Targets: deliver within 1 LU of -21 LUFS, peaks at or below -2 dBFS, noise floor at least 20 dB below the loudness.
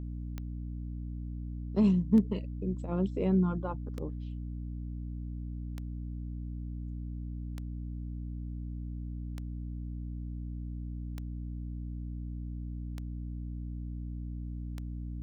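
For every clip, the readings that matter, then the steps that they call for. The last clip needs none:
clicks found 9; hum 60 Hz; highest harmonic 300 Hz; hum level -35 dBFS; loudness -36.0 LUFS; peak level -14.0 dBFS; loudness target -21.0 LUFS
-> de-click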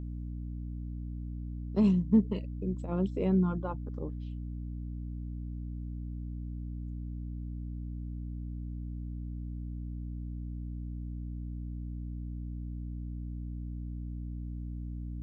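clicks found 0; hum 60 Hz; highest harmonic 300 Hz; hum level -35 dBFS
-> de-hum 60 Hz, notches 5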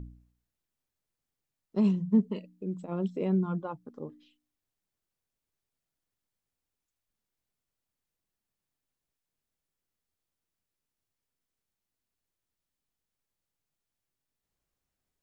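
hum not found; loudness -30.0 LUFS; peak level -14.5 dBFS; loudness target -21.0 LUFS
-> trim +9 dB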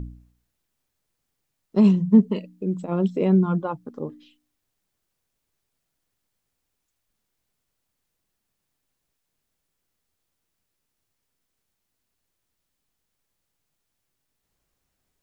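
loudness -21.0 LUFS; peak level -5.5 dBFS; noise floor -79 dBFS

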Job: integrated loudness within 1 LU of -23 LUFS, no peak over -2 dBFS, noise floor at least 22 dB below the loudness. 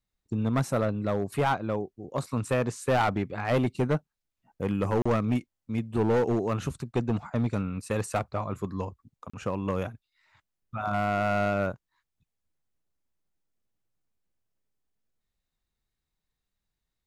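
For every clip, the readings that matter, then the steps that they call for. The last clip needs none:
clipped samples 1.6%; clipping level -19.5 dBFS; dropouts 2; longest dropout 35 ms; loudness -29.0 LUFS; peak level -19.5 dBFS; loudness target -23.0 LUFS
-> clip repair -19.5 dBFS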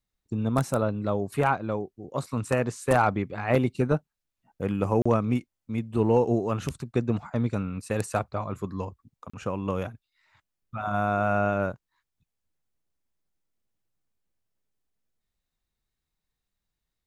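clipped samples 0.0%; dropouts 2; longest dropout 35 ms
-> interpolate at 5.02/9.30 s, 35 ms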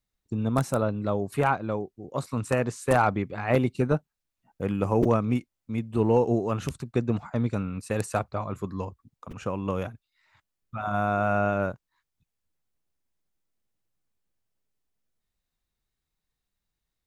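dropouts 0; loudness -27.5 LUFS; peak level -10.5 dBFS; loudness target -23.0 LUFS
-> trim +4.5 dB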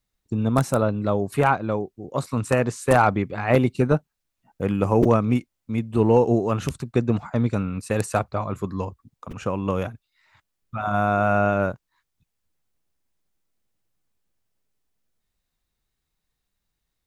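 loudness -23.0 LUFS; peak level -6.0 dBFS; noise floor -80 dBFS

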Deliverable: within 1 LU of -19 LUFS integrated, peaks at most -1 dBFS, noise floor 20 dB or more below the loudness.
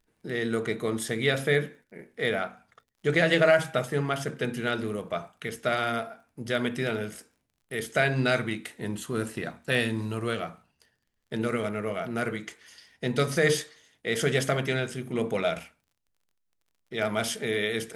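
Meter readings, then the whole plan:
tick rate 21 per s; loudness -28.5 LUFS; peak level -8.5 dBFS; loudness target -19.0 LUFS
-> de-click; trim +9.5 dB; peak limiter -1 dBFS

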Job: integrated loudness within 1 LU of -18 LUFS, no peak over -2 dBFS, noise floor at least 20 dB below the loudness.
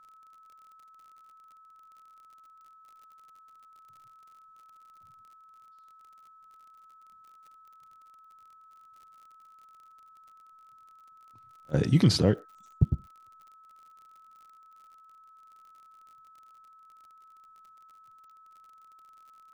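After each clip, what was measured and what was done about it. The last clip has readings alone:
tick rate 49 per s; steady tone 1.3 kHz; tone level -53 dBFS; loudness -26.0 LUFS; peak level -9.0 dBFS; loudness target -18.0 LUFS
-> de-click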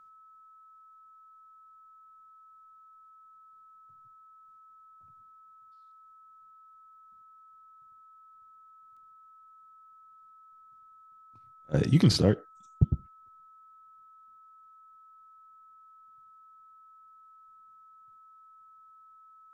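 tick rate 0.051 per s; steady tone 1.3 kHz; tone level -53 dBFS
-> band-stop 1.3 kHz, Q 30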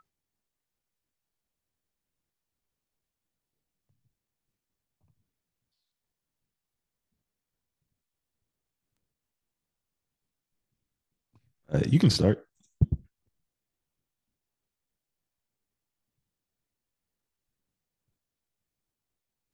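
steady tone not found; loudness -26.0 LUFS; peak level -9.0 dBFS; loudness target -18.0 LUFS
-> trim +8 dB; peak limiter -2 dBFS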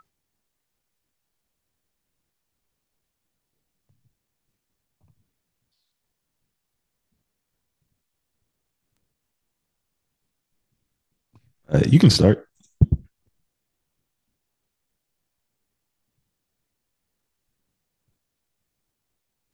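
loudness -18.5 LUFS; peak level -2.0 dBFS; noise floor -80 dBFS

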